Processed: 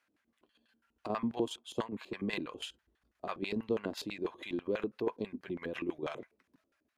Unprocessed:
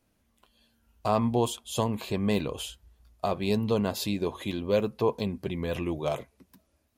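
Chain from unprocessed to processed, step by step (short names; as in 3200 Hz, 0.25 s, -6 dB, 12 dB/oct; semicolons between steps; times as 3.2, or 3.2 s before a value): high shelf 2300 Hz +10 dB; LFO band-pass square 6.1 Hz 320–1600 Hz; in parallel at -2.5 dB: compressor, threshold -41 dBFS, peak gain reduction 14.5 dB; on the sum: tremolo saw down 7.3 Hz, depth 60%; 1.82–2.34 three-band expander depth 100%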